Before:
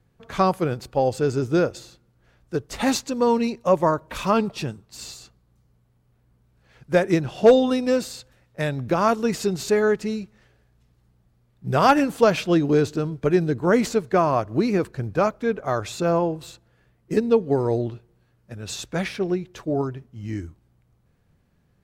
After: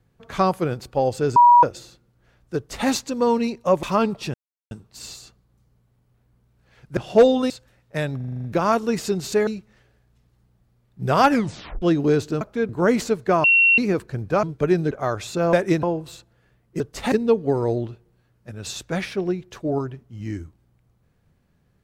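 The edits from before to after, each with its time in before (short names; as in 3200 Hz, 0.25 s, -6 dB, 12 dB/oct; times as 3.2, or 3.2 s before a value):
1.36–1.63 bleep 964 Hz -8 dBFS
2.56–2.88 copy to 17.15
3.83–4.18 cut
4.69 insert silence 0.37 s
6.95–7.25 move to 16.18
7.78–8.14 cut
8.8 stutter 0.04 s, 8 plays
9.83–10.12 cut
11.95 tape stop 0.52 s
13.06–13.54 swap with 15.28–15.56
14.29–14.63 bleep 2730 Hz -12 dBFS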